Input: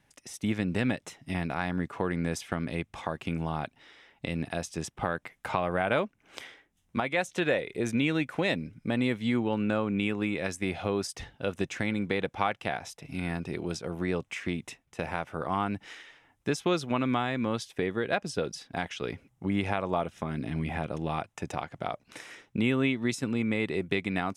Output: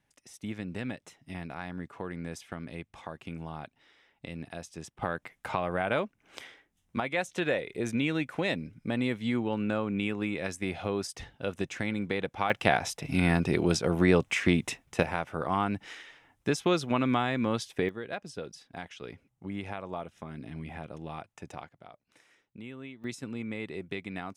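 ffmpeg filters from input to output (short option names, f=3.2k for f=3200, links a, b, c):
-af "asetnsamples=n=441:p=0,asendcmd='5.02 volume volume -2dB;12.5 volume volume 8dB;15.03 volume volume 1dB;17.89 volume volume -8.5dB;21.69 volume volume -17.5dB;23.04 volume volume -8dB',volume=-8dB"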